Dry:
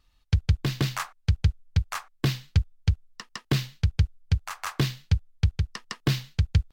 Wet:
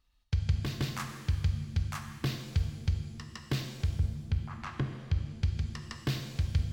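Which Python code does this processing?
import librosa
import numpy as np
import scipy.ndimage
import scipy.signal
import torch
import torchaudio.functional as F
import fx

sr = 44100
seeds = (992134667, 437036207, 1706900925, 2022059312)

y = fx.env_lowpass_down(x, sr, base_hz=560.0, full_db=-22.0, at=(3.7, 5.31))
y = fx.rev_shimmer(y, sr, seeds[0], rt60_s=1.4, semitones=7, shimmer_db=-8, drr_db=5.0)
y = y * librosa.db_to_amplitude(-8.0)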